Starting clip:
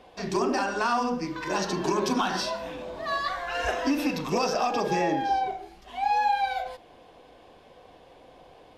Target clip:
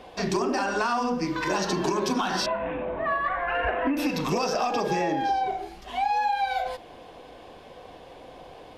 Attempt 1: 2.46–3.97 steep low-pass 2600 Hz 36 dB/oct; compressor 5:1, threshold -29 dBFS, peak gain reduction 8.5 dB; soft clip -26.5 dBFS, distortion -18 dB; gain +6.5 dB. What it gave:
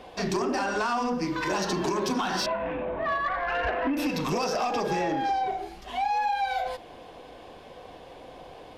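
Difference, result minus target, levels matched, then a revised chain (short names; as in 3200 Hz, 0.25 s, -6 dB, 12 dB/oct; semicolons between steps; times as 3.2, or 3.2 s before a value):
soft clip: distortion +16 dB
2.46–3.97 steep low-pass 2600 Hz 36 dB/oct; compressor 5:1, threshold -29 dBFS, peak gain reduction 8.5 dB; soft clip -17 dBFS, distortion -34 dB; gain +6.5 dB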